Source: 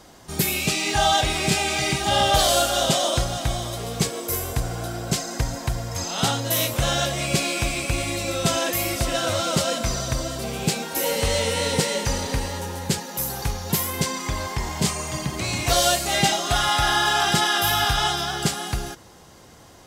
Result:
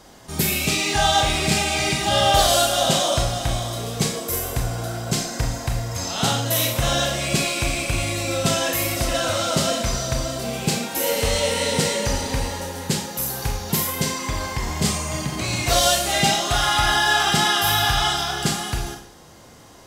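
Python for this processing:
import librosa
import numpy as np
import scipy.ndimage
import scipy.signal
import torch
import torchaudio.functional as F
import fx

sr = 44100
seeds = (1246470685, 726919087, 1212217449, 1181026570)

y = fx.rev_schroeder(x, sr, rt60_s=0.47, comb_ms=26, drr_db=3.0)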